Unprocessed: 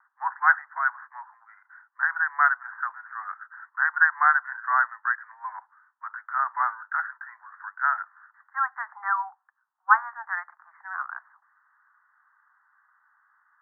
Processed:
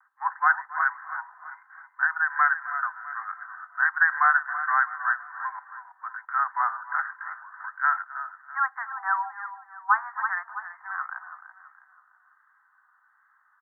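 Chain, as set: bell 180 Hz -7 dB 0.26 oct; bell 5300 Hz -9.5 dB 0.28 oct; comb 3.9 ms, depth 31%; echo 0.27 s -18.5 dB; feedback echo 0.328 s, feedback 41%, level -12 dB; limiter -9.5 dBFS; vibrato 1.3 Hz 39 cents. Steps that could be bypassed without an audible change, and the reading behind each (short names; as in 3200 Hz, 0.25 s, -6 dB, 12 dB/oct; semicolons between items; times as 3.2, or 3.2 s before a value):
bell 180 Hz: input band starts at 600 Hz; bell 5300 Hz: input band ends at 2000 Hz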